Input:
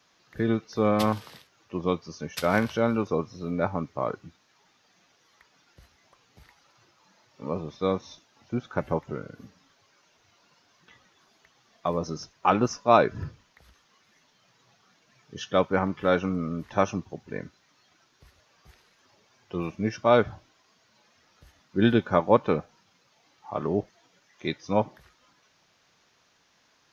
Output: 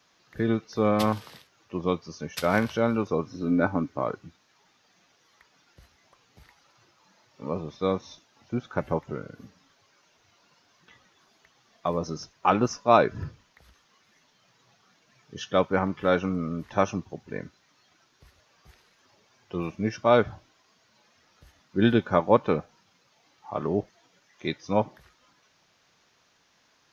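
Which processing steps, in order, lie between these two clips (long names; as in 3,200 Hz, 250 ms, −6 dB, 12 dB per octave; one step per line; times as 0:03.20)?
0:03.25–0:04.01: hollow resonant body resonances 280/1,500 Hz, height 13 dB → 9 dB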